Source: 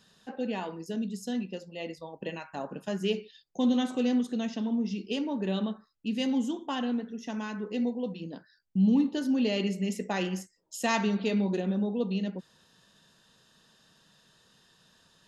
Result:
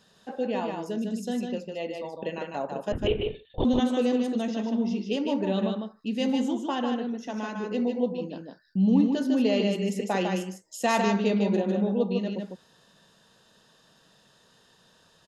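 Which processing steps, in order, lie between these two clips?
2.92–3.65 s: LPC vocoder at 8 kHz whisper; peaking EQ 600 Hz +6 dB 1.5 oct; on a send: delay 152 ms -4.5 dB

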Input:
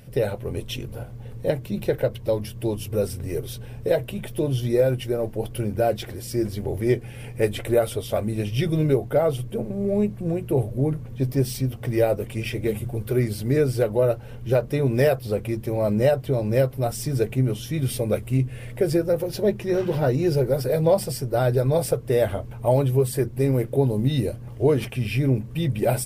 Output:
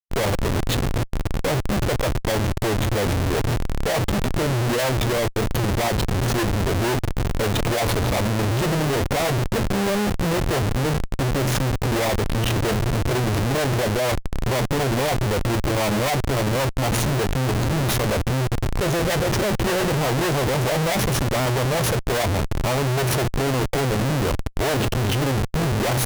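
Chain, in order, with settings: Schmitt trigger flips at -31 dBFS; formant shift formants +3 st; trim +2.5 dB

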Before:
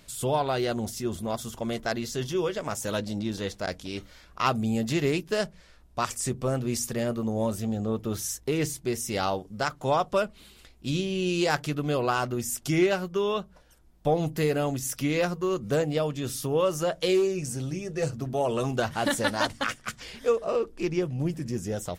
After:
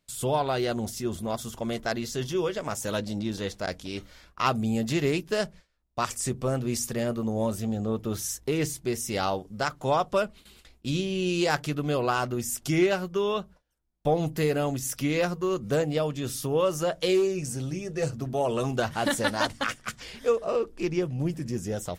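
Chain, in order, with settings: gate with hold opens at -41 dBFS

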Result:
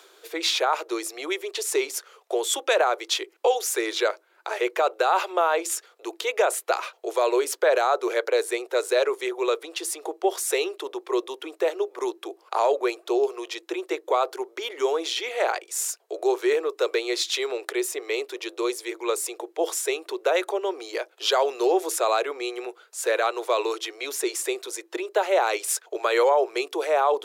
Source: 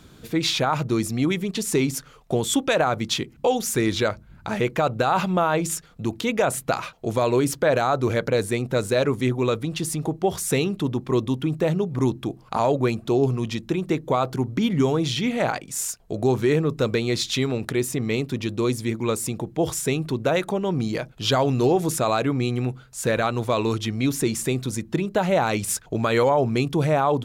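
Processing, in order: steep high-pass 360 Hz 72 dB/octave; reverse; upward compressor, threshold -39 dBFS; reverse

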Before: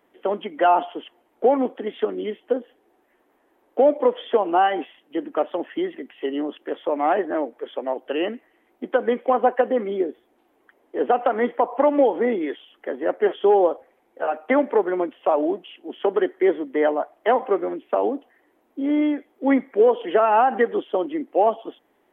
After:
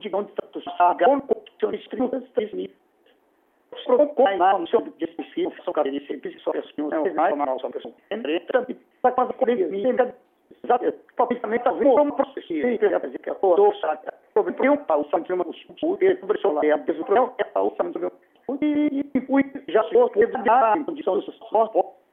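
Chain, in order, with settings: slices played last to first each 133 ms, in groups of 4; on a send: reverberation RT60 0.40 s, pre-delay 27 ms, DRR 19 dB

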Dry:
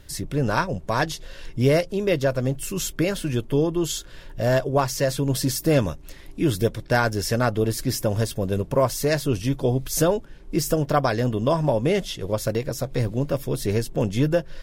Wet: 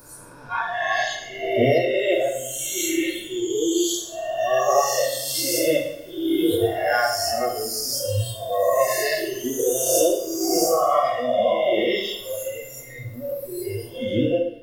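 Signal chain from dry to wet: reverse spectral sustain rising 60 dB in 2.92 s; spectral noise reduction 26 dB; two-slope reverb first 0.72 s, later 2.8 s, from -27 dB, DRR -2 dB; trim -4 dB

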